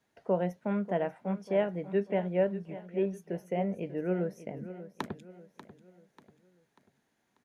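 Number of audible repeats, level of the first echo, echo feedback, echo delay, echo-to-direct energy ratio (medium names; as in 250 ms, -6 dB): 3, -14.0 dB, 42%, 590 ms, -13.0 dB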